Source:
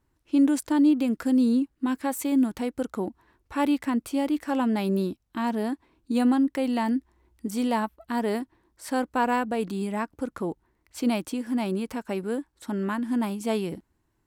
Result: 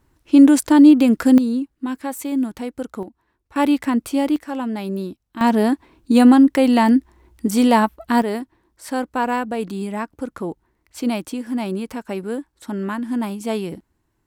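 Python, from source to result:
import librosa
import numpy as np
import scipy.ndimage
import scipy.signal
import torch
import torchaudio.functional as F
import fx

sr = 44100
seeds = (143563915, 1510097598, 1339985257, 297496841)

y = fx.gain(x, sr, db=fx.steps((0.0, 10.5), (1.38, 1.0), (3.03, -6.0), (3.56, 6.5), (4.36, -0.5), (5.41, 11.0), (8.22, 3.0)))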